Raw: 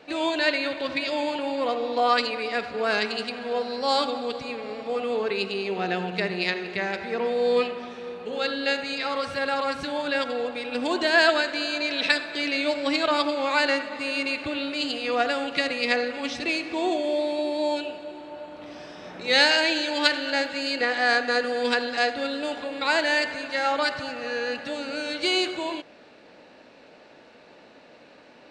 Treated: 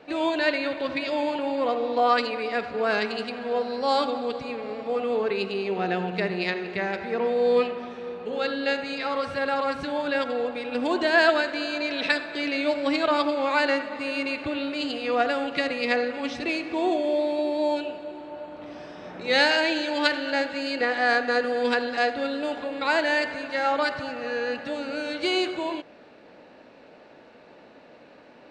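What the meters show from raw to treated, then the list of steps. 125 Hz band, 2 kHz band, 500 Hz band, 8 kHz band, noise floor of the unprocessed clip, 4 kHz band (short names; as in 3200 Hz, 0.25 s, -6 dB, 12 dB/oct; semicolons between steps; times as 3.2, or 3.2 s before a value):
+1.5 dB, -1.0 dB, +1.0 dB, n/a, -51 dBFS, -4.0 dB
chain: high shelf 2800 Hz -9 dB; gain +1.5 dB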